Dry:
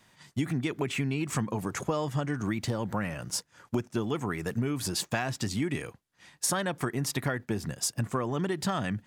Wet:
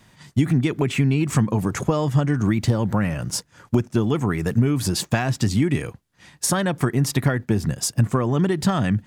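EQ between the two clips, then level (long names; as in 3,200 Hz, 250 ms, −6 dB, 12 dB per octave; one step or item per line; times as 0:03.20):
low-shelf EQ 260 Hz +9 dB
+5.5 dB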